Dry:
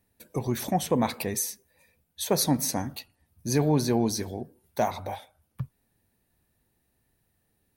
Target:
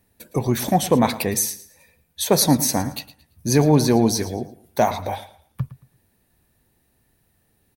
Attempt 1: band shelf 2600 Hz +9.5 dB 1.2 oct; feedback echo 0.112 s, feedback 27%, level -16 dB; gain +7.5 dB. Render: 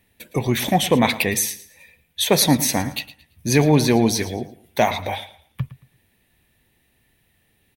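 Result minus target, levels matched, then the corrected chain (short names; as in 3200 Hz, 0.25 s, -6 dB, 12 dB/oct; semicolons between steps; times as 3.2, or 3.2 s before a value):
2000 Hz band +7.0 dB
feedback echo 0.112 s, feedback 27%, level -16 dB; gain +7.5 dB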